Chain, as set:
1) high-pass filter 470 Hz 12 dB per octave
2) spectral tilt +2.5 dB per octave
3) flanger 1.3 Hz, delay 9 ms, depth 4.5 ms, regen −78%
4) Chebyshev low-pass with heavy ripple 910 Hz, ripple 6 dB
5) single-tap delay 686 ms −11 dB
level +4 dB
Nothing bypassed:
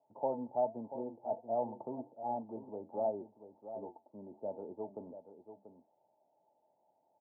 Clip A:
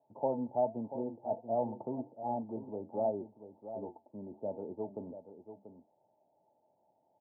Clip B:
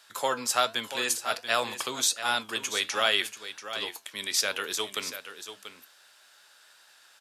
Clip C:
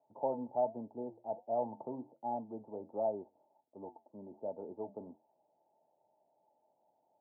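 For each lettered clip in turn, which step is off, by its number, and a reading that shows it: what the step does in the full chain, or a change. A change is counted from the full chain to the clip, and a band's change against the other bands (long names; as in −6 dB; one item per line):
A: 2, 125 Hz band +5.5 dB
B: 4, change in crest factor +3.0 dB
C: 5, change in momentary loudness spread −2 LU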